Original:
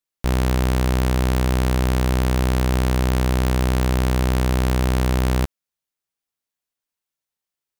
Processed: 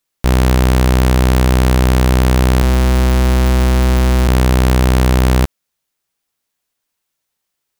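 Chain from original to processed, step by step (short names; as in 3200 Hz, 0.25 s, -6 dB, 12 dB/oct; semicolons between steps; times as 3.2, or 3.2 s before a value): in parallel at +1 dB: limiter -24.5 dBFS, peak gain reduction 10.5 dB; 2.62–4.28 on the sum: Schmitt trigger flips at -28.5 dBFS; gain +5 dB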